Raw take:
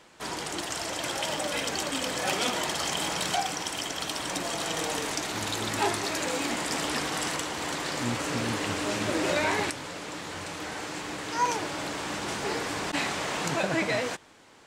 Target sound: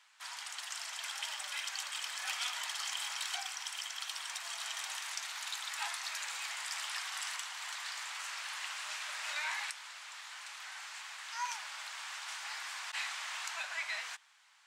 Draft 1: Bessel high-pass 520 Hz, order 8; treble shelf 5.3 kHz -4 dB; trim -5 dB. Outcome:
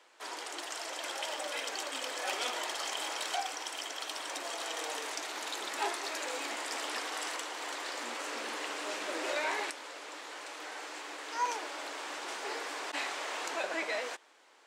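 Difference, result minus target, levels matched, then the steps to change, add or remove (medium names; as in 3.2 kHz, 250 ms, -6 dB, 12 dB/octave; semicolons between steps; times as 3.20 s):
500 Hz band +18.5 dB
change: Bessel high-pass 1.5 kHz, order 8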